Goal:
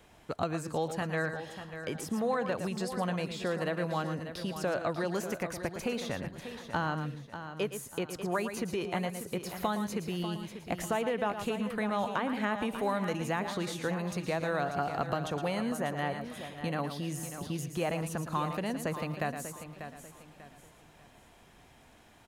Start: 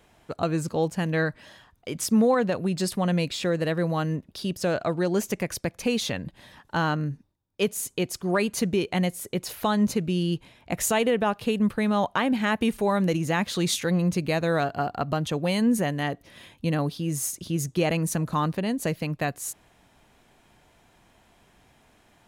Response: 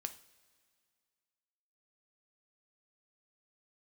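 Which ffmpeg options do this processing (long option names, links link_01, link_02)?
-filter_complex "[0:a]asplit=2[link_01][link_02];[link_02]aecho=0:1:112:0.282[link_03];[link_01][link_03]amix=inputs=2:normalize=0,acrossover=split=670|1600[link_04][link_05][link_06];[link_04]acompressor=threshold=-35dB:ratio=4[link_07];[link_05]acompressor=threshold=-32dB:ratio=4[link_08];[link_06]acompressor=threshold=-45dB:ratio=4[link_09];[link_07][link_08][link_09]amix=inputs=3:normalize=0,asplit=2[link_10][link_11];[link_11]aecho=0:1:592|1184|1776|2368:0.299|0.104|0.0366|0.0128[link_12];[link_10][link_12]amix=inputs=2:normalize=0"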